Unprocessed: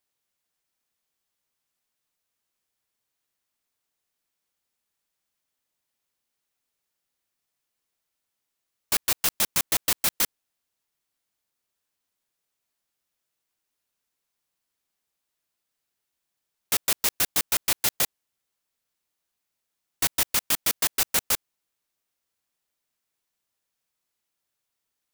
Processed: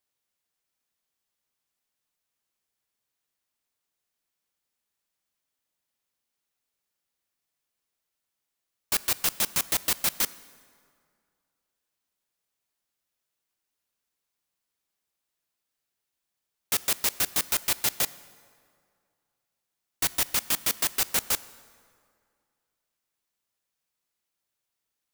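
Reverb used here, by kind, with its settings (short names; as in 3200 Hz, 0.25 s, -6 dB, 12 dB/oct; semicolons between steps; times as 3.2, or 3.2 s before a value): plate-style reverb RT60 2.2 s, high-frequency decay 0.65×, DRR 17 dB; gain -2 dB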